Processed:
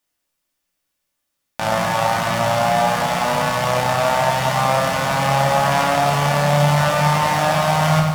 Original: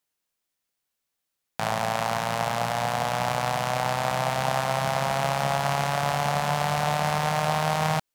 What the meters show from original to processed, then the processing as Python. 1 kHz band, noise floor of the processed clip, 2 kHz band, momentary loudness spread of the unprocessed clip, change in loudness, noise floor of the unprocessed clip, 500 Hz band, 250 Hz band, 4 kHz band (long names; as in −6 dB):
+7.5 dB, −76 dBFS, +8.0 dB, 2 LU, +8.0 dB, −82 dBFS, +9.0 dB, +10.0 dB, +7.5 dB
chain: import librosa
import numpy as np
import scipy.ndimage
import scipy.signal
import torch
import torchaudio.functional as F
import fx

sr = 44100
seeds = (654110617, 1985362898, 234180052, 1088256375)

y = fx.notch(x, sr, hz=4000.0, q=23.0)
y = fx.room_shoebox(y, sr, seeds[0], volume_m3=580.0, walls='furnished', distance_m=2.5)
y = fx.echo_crushed(y, sr, ms=96, feedback_pct=80, bits=7, wet_db=-9.0)
y = y * librosa.db_to_amplitude(3.5)